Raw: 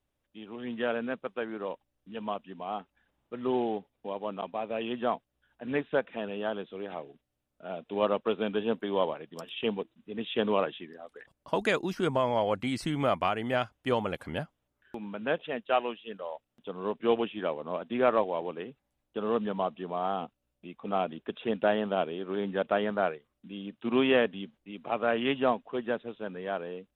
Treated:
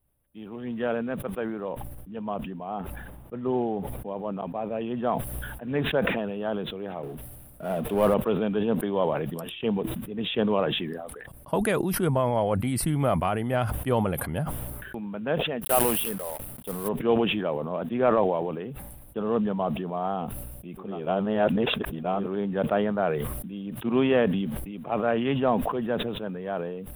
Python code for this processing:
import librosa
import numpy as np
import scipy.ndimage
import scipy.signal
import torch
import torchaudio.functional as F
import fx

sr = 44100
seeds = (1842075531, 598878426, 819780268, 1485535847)

y = fx.high_shelf(x, sr, hz=2500.0, db=-6.5, at=(1.7, 5.04))
y = fx.power_curve(y, sr, exponent=0.7, at=(7.03, 8.14))
y = fx.block_float(y, sr, bits=3, at=(15.61, 16.87), fade=0.02)
y = fx.edit(y, sr, fx.reverse_span(start_s=20.89, length_s=1.33, crossfade_s=0.24), tone=tone)
y = fx.curve_eq(y, sr, hz=(150.0, 270.0, 740.0, 6900.0, 9800.0), db=(0, -7, -7, -17, 6))
y = fx.sustainer(y, sr, db_per_s=32.0)
y = y * librosa.db_to_amplitude(9.0)